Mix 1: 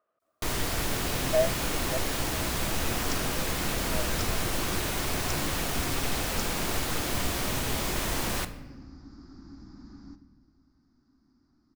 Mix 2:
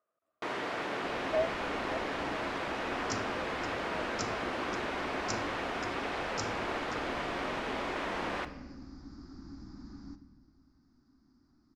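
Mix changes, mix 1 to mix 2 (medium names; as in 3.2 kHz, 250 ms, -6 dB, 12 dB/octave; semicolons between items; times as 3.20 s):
speech -6.0 dB; first sound: add band-pass 340–2200 Hz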